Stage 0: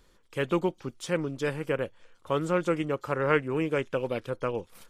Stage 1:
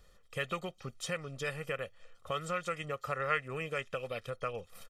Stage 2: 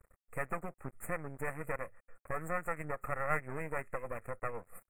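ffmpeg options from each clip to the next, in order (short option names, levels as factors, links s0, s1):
-filter_complex "[0:a]aecho=1:1:1.6:0.72,acrossover=split=1200[s0][s1];[s0]acompressor=threshold=0.02:ratio=6[s2];[s2][s1]amix=inputs=2:normalize=0,volume=0.708"
-af "aeval=exprs='max(val(0),0)':c=same,asuperstop=centerf=4300:order=12:qfactor=0.77,volume=1.41"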